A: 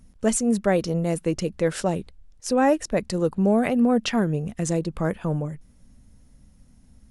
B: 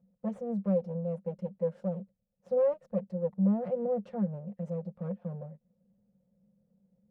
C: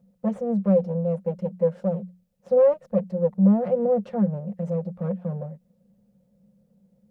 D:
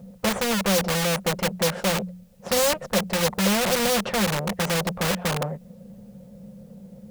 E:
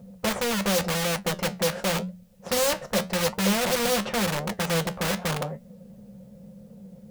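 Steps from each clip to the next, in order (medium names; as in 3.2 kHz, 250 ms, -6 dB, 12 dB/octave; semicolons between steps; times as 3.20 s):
comb filter that takes the minimum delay 5.6 ms; two resonant band-passes 320 Hz, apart 1.4 oct; trim -3.5 dB
hum notches 60/120/180 Hz; trim +9 dB
in parallel at -9.5 dB: integer overflow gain 25.5 dB; on the sum: spectrum-flattening compressor 2:1
flange 0.89 Hz, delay 8.5 ms, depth 7.5 ms, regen +69%; trim +2 dB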